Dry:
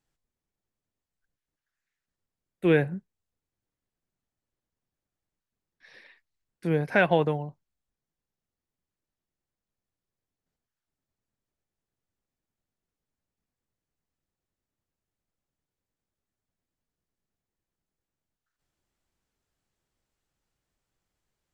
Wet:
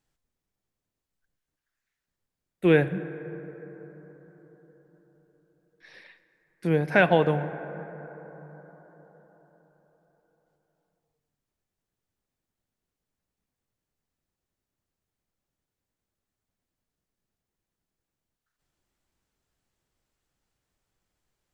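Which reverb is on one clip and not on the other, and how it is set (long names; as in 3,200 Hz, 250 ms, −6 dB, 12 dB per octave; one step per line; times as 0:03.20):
dense smooth reverb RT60 4.7 s, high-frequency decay 0.3×, DRR 12 dB
level +2 dB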